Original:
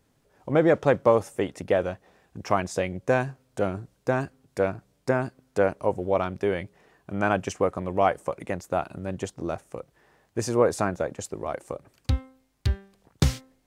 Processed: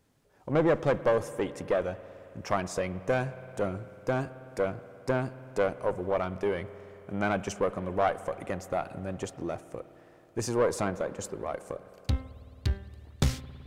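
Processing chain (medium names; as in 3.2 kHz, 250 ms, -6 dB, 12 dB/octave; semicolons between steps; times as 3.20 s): single-diode clipper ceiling -18.5 dBFS; spring tank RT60 3.6 s, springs 54 ms, chirp 55 ms, DRR 14.5 dB; trim -2 dB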